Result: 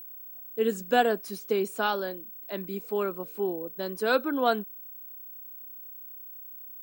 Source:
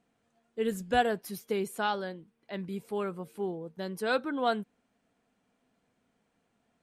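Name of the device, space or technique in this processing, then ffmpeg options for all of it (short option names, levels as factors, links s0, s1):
old television with a line whistle: -af "highpass=f=220:w=0.5412,highpass=f=220:w=1.3066,equalizer=f=820:t=q:w=4:g=-4,equalizer=f=2000:t=q:w=4:g=-6,equalizer=f=3300:t=q:w=4:g=-3,lowpass=f=9000:w=0.5412,lowpass=f=9000:w=1.3066,aeval=exprs='val(0)+0.00501*sin(2*PI*15734*n/s)':c=same,volume=1.78"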